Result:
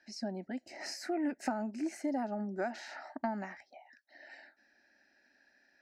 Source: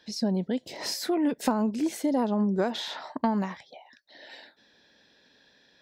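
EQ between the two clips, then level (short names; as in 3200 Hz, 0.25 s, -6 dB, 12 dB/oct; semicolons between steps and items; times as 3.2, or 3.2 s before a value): LPF 6100 Hz 12 dB/oct; low shelf 380 Hz -9 dB; fixed phaser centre 700 Hz, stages 8; -2.5 dB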